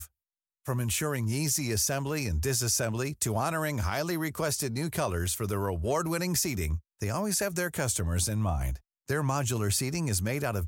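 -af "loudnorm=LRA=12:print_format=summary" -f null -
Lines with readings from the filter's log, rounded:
Input Integrated:    -29.4 LUFS
Input True Peak:     -14.9 dBTP
Input LRA:             1.4 LU
Input Threshold:     -39.6 LUFS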